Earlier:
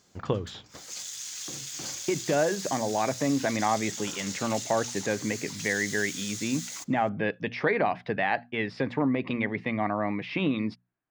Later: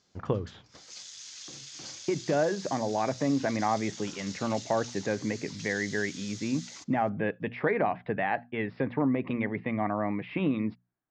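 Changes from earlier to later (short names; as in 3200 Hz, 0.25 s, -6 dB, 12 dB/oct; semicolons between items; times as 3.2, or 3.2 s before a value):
speech: add air absorption 430 m; background: add ladder low-pass 6600 Hz, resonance 30%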